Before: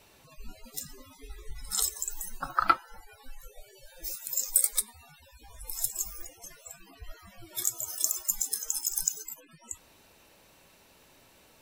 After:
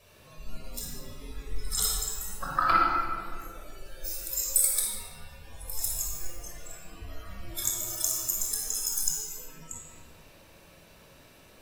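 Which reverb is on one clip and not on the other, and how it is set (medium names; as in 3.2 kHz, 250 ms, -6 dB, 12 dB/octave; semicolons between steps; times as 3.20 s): simulated room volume 3200 m³, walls mixed, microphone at 5.7 m; trim -4 dB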